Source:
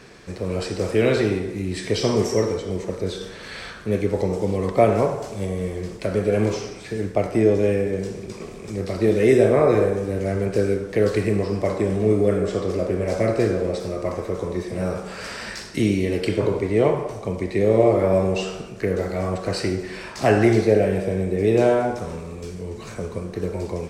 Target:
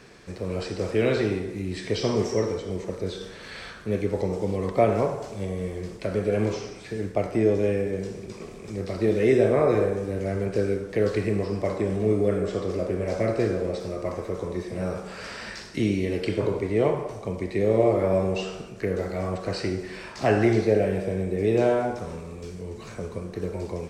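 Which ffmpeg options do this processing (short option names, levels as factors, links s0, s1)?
-filter_complex "[0:a]acrossover=split=6900[s0][s1];[s1]acompressor=threshold=0.00224:ratio=4:attack=1:release=60[s2];[s0][s2]amix=inputs=2:normalize=0,volume=0.631"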